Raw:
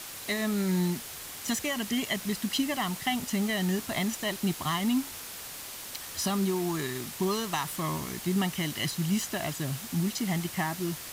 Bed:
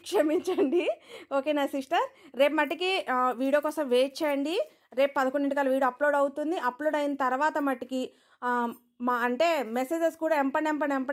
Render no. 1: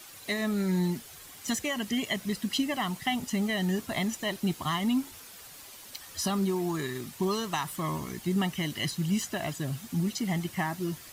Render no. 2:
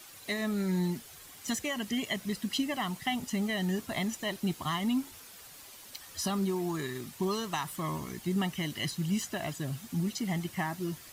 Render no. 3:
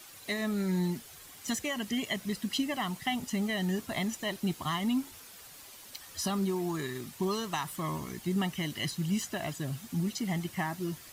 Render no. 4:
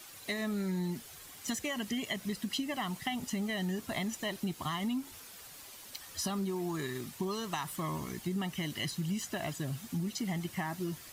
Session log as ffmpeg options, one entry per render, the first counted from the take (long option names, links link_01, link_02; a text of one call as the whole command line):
ffmpeg -i in.wav -af "afftdn=noise_reduction=9:noise_floor=-42" out.wav
ffmpeg -i in.wav -af "volume=-2.5dB" out.wav
ffmpeg -i in.wav -af anull out.wav
ffmpeg -i in.wav -af "acompressor=threshold=-31dB:ratio=6" out.wav